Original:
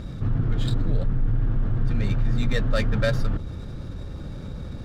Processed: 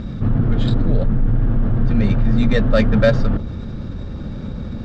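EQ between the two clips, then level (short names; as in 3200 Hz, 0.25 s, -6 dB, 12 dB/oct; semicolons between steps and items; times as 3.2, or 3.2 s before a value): Bessel low-pass 4700 Hz, order 8; bell 220 Hz +8.5 dB 0.36 oct; dynamic EQ 590 Hz, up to +5 dB, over -40 dBFS, Q 1.1; +5.5 dB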